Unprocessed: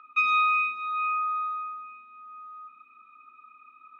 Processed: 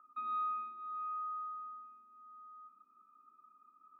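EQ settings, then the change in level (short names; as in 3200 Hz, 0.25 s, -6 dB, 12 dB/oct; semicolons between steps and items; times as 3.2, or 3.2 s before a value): dynamic EQ 790 Hz, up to -4 dB, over -39 dBFS, Q 1.4; running mean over 17 samples; air absorption 430 m; -4.5 dB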